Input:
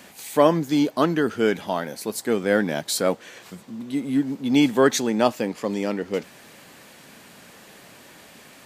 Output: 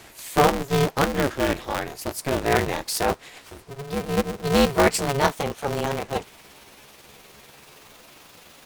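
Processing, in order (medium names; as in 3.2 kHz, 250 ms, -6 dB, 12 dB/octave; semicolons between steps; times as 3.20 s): pitch bend over the whole clip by +7 st starting unshifted; polarity switched at an audio rate 140 Hz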